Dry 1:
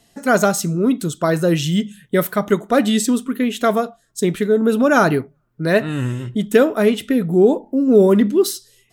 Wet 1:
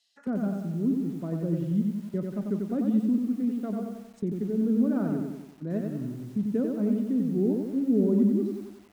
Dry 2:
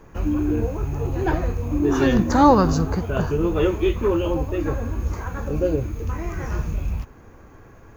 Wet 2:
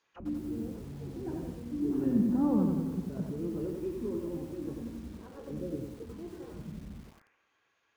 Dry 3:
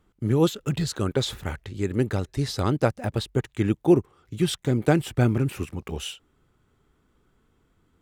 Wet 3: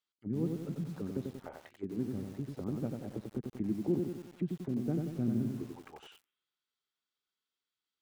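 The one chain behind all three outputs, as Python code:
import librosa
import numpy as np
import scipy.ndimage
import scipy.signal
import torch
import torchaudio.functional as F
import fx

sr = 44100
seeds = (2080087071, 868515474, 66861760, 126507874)

y = fx.auto_wah(x, sr, base_hz=220.0, top_hz=4500.0, q=2.4, full_db=-22.0, direction='down')
y = fx.echo_crushed(y, sr, ms=92, feedback_pct=55, bits=8, wet_db=-4)
y = y * librosa.db_to_amplitude(-7.0)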